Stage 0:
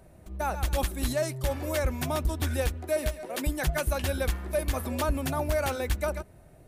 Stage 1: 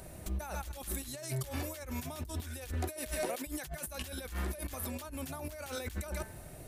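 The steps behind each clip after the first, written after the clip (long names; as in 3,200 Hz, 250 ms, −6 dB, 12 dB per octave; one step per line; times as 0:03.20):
high-shelf EQ 2,600 Hz +10.5 dB
hum removal 220.1 Hz, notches 10
compressor whose output falls as the input rises −37 dBFS, ratio −1
level −3.5 dB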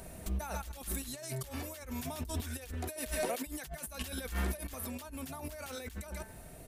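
comb filter 4.4 ms, depth 33%
soft clipping −20 dBFS, distortion −35 dB
sample-and-hold tremolo
level +3 dB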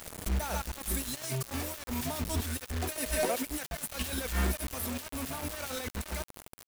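bit reduction 7 bits
level +4.5 dB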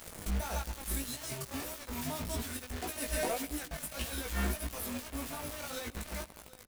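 single-tap delay 750 ms −19.5 dB
chorus effect 1.7 Hz, delay 17 ms, depth 3 ms
on a send at −20 dB: convolution reverb RT60 0.75 s, pre-delay 79 ms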